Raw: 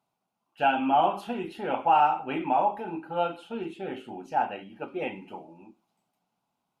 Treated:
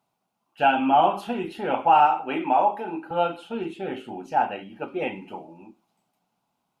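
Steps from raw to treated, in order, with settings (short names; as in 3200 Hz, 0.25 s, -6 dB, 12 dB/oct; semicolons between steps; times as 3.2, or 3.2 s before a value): 2.06–3.11 HPF 220 Hz 12 dB/oct; gain +4 dB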